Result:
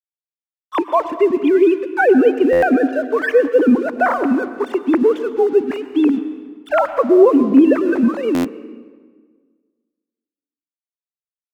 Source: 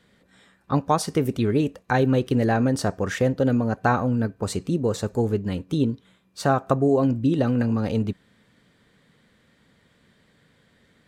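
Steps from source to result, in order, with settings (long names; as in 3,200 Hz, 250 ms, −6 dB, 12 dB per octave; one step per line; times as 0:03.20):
three sine waves on the formant tracks
in parallel at −2 dB: brickwall limiter −18 dBFS, peak gain reduction 11 dB
on the sum: dead-zone distortion −45 dBFS
on a send at −11 dB: convolution reverb RT60 1.5 s, pre-delay 93 ms
on the sum: wrong playback speed 25 fps video run at 24 fps
buffer that repeats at 0:02.52/0:08.34, samples 512, times 8
level +4 dB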